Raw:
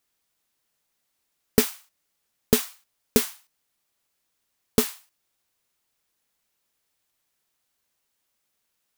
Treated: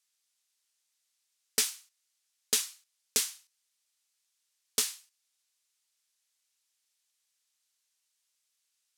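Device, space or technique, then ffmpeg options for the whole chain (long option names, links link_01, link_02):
piezo pickup straight into a mixer: -af "lowpass=7100,aderivative,volume=5dB"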